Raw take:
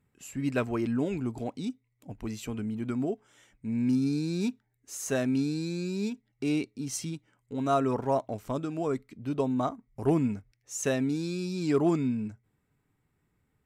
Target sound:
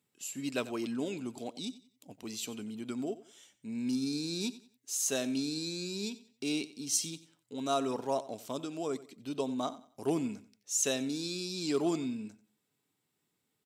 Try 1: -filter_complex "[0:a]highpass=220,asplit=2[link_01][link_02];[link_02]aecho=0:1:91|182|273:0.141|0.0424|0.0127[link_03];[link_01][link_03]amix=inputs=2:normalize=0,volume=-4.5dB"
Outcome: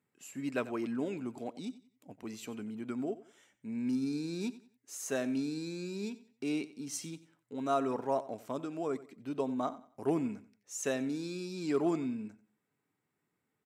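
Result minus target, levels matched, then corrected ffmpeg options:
4,000 Hz band −9.0 dB
-filter_complex "[0:a]highpass=220,highshelf=frequency=2600:width_type=q:width=1.5:gain=9,asplit=2[link_01][link_02];[link_02]aecho=0:1:91|182|273:0.141|0.0424|0.0127[link_03];[link_01][link_03]amix=inputs=2:normalize=0,volume=-4.5dB"

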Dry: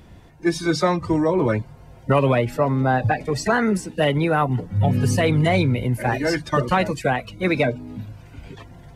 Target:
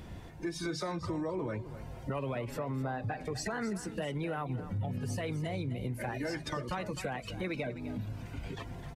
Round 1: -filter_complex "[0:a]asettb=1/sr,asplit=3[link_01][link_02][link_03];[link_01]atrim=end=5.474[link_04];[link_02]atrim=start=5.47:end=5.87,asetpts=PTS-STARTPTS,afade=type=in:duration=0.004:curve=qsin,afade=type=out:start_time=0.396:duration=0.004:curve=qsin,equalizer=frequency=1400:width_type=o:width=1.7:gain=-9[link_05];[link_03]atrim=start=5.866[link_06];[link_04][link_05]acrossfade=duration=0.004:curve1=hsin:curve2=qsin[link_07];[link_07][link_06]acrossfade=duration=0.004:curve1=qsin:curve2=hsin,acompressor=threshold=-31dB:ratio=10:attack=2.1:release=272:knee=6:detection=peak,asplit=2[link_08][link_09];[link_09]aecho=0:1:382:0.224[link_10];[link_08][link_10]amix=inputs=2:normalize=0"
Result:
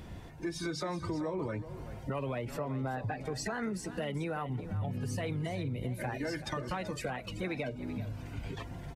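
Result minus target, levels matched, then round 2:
echo 126 ms late
-filter_complex "[0:a]asettb=1/sr,asplit=3[link_01][link_02][link_03];[link_01]atrim=end=5.474[link_04];[link_02]atrim=start=5.47:end=5.87,asetpts=PTS-STARTPTS,afade=type=in:duration=0.004:curve=qsin,afade=type=out:start_time=0.396:duration=0.004:curve=qsin,equalizer=frequency=1400:width_type=o:width=1.7:gain=-9[link_05];[link_03]atrim=start=5.866[link_06];[link_04][link_05]acrossfade=duration=0.004:curve1=hsin:curve2=qsin[link_07];[link_07][link_06]acrossfade=duration=0.004:curve1=qsin:curve2=hsin,acompressor=threshold=-31dB:ratio=10:attack=2.1:release=272:knee=6:detection=peak,asplit=2[link_08][link_09];[link_09]aecho=0:1:256:0.224[link_10];[link_08][link_10]amix=inputs=2:normalize=0"

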